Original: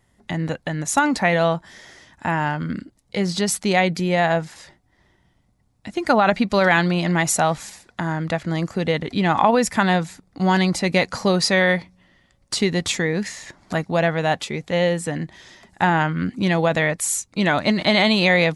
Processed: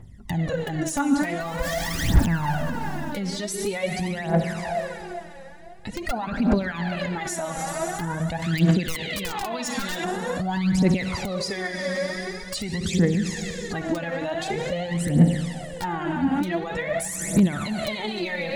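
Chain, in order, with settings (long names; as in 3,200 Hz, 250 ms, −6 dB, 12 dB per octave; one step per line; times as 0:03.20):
0:01.40–0:02.55: converter with a step at zero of −23 dBFS
reverb reduction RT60 1.5 s
convolution reverb RT60 2.8 s, pre-delay 47 ms, DRR 6 dB
downward compressor 20 to 1, threshold −24 dBFS, peak gain reduction 14 dB
0:08.42–0:10.04: meter weighting curve D
wrap-around overflow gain 15.5 dB
brickwall limiter −24.5 dBFS, peak gain reduction 9 dB
low-shelf EQ 290 Hz +11.5 dB
phase shifter 0.46 Hz, delay 3.8 ms, feedback 74%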